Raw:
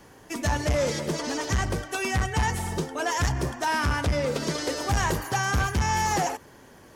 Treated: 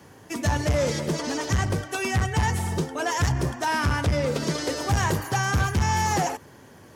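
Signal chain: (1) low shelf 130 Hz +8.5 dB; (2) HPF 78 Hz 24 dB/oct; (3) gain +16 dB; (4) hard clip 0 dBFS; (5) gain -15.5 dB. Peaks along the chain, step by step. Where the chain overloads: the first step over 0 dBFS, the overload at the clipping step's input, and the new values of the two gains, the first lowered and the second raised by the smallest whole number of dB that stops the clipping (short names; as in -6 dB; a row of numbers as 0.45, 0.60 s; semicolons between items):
-10.0, -10.5, +5.5, 0.0, -15.5 dBFS; step 3, 5.5 dB; step 3 +10 dB, step 5 -9.5 dB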